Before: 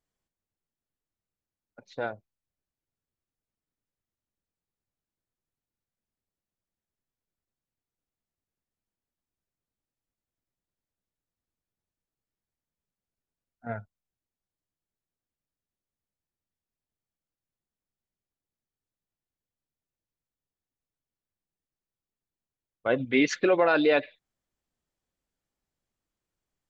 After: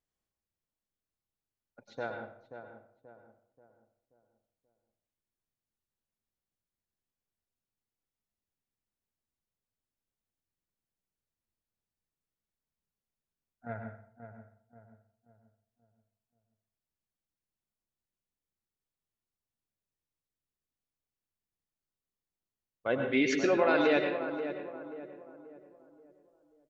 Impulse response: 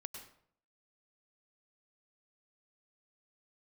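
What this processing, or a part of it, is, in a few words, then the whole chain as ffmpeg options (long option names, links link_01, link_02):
bathroom: -filter_complex "[1:a]atrim=start_sample=2205[link_01];[0:a][link_01]afir=irnorm=-1:irlink=0,asplit=2[link_02][link_03];[link_03]adelay=532,lowpass=frequency=1300:poles=1,volume=-9dB,asplit=2[link_04][link_05];[link_05]adelay=532,lowpass=frequency=1300:poles=1,volume=0.43,asplit=2[link_06][link_07];[link_07]adelay=532,lowpass=frequency=1300:poles=1,volume=0.43,asplit=2[link_08][link_09];[link_09]adelay=532,lowpass=frequency=1300:poles=1,volume=0.43,asplit=2[link_10][link_11];[link_11]adelay=532,lowpass=frequency=1300:poles=1,volume=0.43[link_12];[link_02][link_04][link_06][link_08][link_10][link_12]amix=inputs=6:normalize=0"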